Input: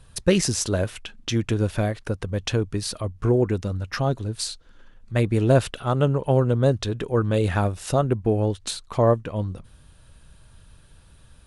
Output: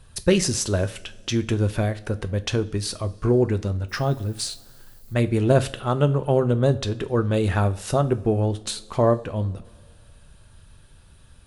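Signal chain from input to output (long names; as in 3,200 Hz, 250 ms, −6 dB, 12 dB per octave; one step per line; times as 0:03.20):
coupled-rooms reverb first 0.33 s, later 2.3 s, from −20 dB, DRR 10.5 dB
0:03.88–0:05.13: background noise violet −55 dBFS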